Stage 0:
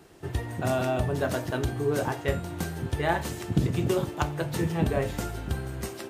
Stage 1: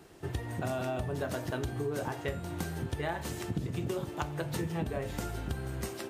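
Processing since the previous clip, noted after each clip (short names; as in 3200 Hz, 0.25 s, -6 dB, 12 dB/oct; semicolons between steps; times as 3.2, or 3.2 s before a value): compressor, threshold -29 dBFS, peak gain reduction 11 dB; gain -1.5 dB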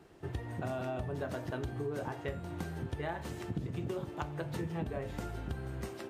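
high shelf 4300 Hz -9.5 dB; gain -3 dB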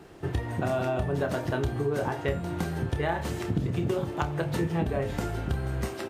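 doubler 29 ms -10.5 dB; gain +9 dB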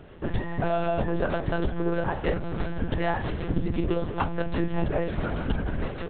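monotone LPC vocoder at 8 kHz 170 Hz; gain +2.5 dB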